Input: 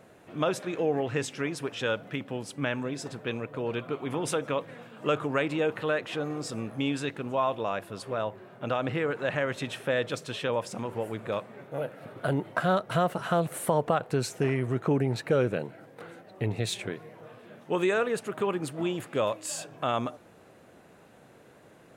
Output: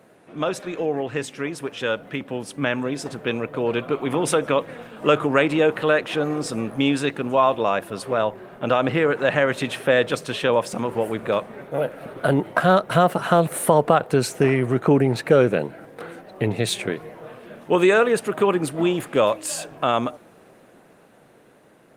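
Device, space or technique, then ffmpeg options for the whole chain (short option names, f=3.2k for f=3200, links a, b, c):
video call: -af "highpass=140,dynaudnorm=f=570:g=9:m=7dB,volume=3dB" -ar 48000 -c:a libopus -b:a 32k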